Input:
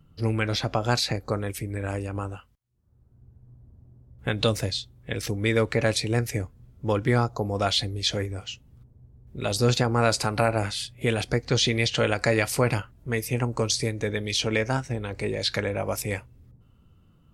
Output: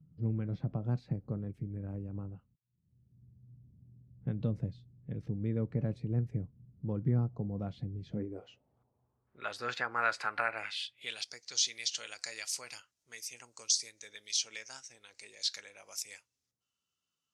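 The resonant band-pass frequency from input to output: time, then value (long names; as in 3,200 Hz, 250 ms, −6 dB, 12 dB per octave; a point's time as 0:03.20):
resonant band-pass, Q 2.5
0:08.11 160 Hz
0:08.47 560 Hz
0:09.55 1,600 Hz
0:10.41 1,600 Hz
0:11.37 6,000 Hz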